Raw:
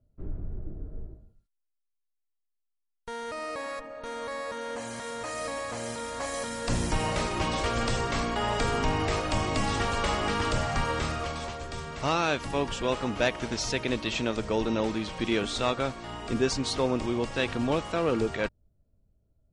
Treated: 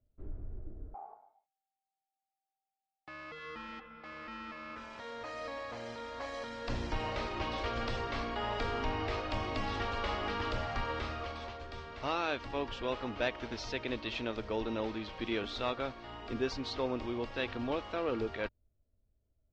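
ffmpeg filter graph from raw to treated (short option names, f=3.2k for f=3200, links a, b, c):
-filter_complex "[0:a]asettb=1/sr,asplit=3[a][b][c];[a]atrim=end=0.944[d];[b]atrim=start=0.94:end=4.99,asetpts=PTS-STARTPTS,afade=t=in:d=0.004:c=qsin,afade=t=out:st=4.046:d=0.004:c=qsin,aeval=exprs='val(0)*sin(2*PI*780*n/s)':c=same,aecho=1:1:4.6:0.39,atrim=end_sample=178605[e];[c]atrim=start=4.986[f];[d][e]acrossfade=d=0.004:c1=hsin:c2=qsin[g];[g][f]acrossfade=d=0.004:c1=qsin:c2=hsin,lowpass=f=4.7k:w=0.5412,lowpass=f=4.7k:w=1.3066,equalizer=f=160:w=3.2:g=-12.5,volume=-7dB"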